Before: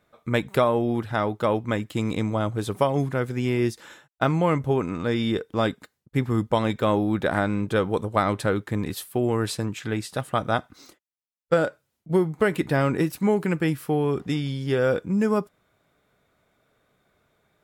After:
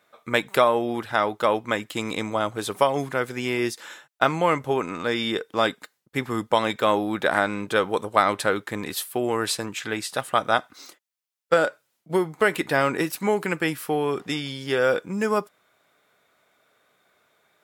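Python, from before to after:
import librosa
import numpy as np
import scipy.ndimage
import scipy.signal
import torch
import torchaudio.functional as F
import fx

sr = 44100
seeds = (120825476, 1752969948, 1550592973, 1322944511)

y = fx.highpass(x, sr, hz=760.0, slope=6)
y = F.gain(torch.from_numpy(y), 6.0).numpy()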